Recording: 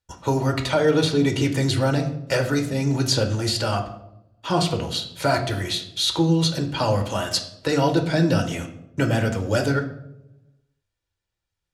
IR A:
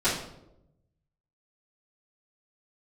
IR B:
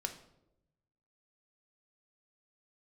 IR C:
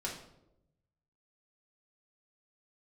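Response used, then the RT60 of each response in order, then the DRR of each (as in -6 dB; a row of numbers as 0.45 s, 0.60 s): B; 0.85 s, 0.85 s, 0.85 s; -14.0 dB, 4.5 dB, -4.5 dB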